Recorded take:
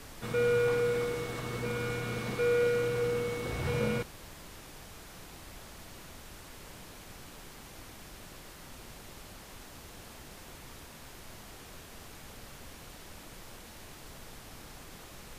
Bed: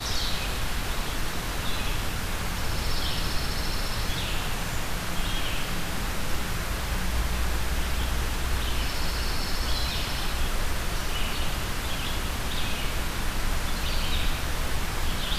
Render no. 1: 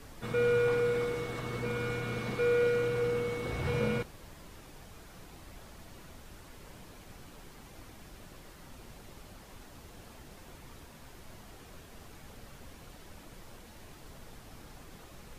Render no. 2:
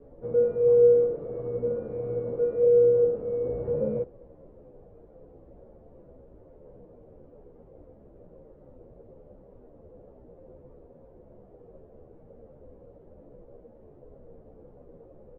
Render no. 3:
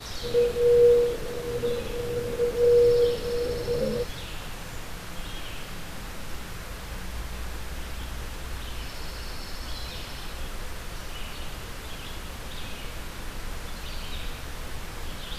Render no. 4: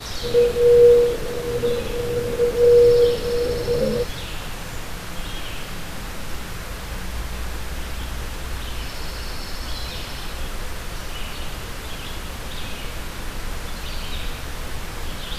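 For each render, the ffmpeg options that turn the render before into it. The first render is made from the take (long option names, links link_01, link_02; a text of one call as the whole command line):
ffmpeg -i in.wav -af "afftdn=noise_reduction=6:noise_floor=-50" out.wav
ffmpeg -i in.wav -filter_complex "[0:a]lowpass=frequency=510:width_type=q:width=4.9,asplit=2[link_01][link_02];[link_02]adelay=11.7,afreqshift=-1.5[link_03];[link_01][link_03]amix=inputs=2:normalize=1" out.wav
ffmpeg -i in.wav -i bed.wav -filter_complex "[1:a]volume=-8dB[link_01];[0:a][link_01]amix=inputs=2:normalize=0" out.wav
ffmpeg -i in.wav -af "volume=6dB" out.wav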